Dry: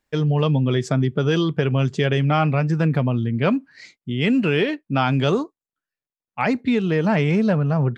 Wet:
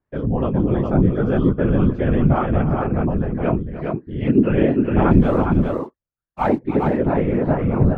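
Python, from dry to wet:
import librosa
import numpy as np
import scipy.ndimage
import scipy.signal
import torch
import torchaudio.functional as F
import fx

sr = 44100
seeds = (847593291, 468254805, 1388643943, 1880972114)

y = scipy.signal.sosfilt(scipy.signal.butter(2, 1200.0, 'lowpass', fs=sr, output='sos'), x)
y = fx.leveller(y, sr, passes=1, at=(5.09, 6.57))
y = fx.chorus_voices(y, sr, voices=4, hz=0.81, base_ms=19, depth_ms=4.0, mix_pct=55)
y = fx.whisperise(y, sr, seeds[0])
y = fx.echo_multitap(y, sr, ms=(303, 409), db=(-13.5, -4.0))
y = y * 10.0 ** (3.0 / 20.0)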